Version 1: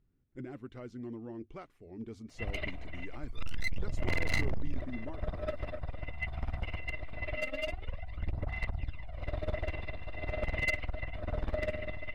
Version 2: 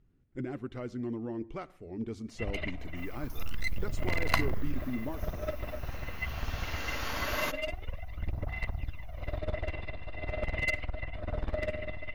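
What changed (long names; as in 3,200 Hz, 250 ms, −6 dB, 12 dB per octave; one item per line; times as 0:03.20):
speech +5.5 dB
second sound: unmuted
reverb: on, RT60 0.50 s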